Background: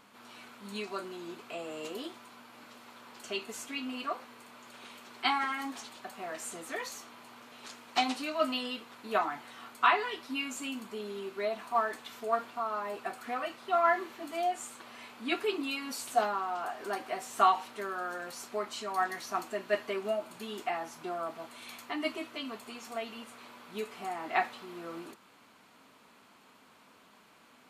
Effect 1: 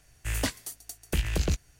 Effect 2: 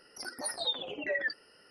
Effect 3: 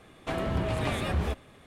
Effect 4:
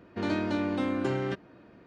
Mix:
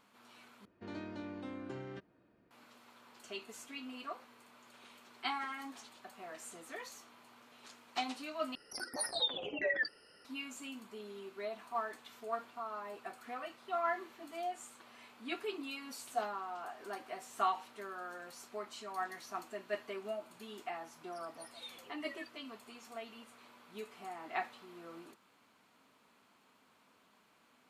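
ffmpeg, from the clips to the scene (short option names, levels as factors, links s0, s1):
-filter_complex "[2:a]asplit=2[s0][s1];[0:a]volume=0.376,asplit=3[s2][s3][s4];[s2]atrim=end=0.654[s5];[4:a]atrim=end=1.86,asetpts=PTS-STARTPTS,volume=0.168[s6];[s3]atrim=start=2.506:end=8.554[s7];[s0]atrim=end=1.7,asetpts=PTS-STARTPTS,volume=0.841[s8];[s4]atrim=start=10.246[s9];[s1]atrim=end=1.7,asetpts=PTS-STARTPTS,volume=0.126,afade=t=in:d=0.004:c=hsin,afade=t=out:st=1.696:d=0.004:c=hsin,adelay=20960[s10];[s5][s6]acrossfade=d=0.004:c1=hsin:c2=hsin[s11];[s11][s7]acrossfade=d=0.004:c1=hsin:c2=hsin[s12];[s12][s8]acrossfade=d=0.004:c1=hsin:c2=hsin[s13];[s13][s9]acrossfade=d=0.004:c1=hsin:c2=hsin[s14];[s14][s10]amix=inputs=2:normalize=0"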